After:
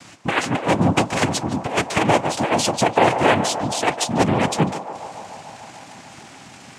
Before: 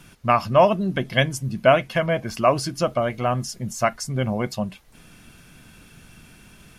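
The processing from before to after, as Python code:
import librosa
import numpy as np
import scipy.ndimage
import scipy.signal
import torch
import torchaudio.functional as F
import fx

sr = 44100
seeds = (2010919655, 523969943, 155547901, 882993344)

p1 = scipy.signal.sosfilt(scipy.signal.butter(2, 180.0, 'highpass', fs=sr, output='sos'), x)
p2 = fx.over_compress(p1, sr, threshold_db=-21.0, ratio=-0.5)
p3 = fx.noise_vocoder(p2, sr, seeds[0], bands=4)
p4 = p3 + fx.echo_banded(p3, sr, ms=147, feedback_pct=83, hz=790.0, wet_db=-9, dry=0)
y = F.gain(torch.from_numpy(p4), 5.5).numpy()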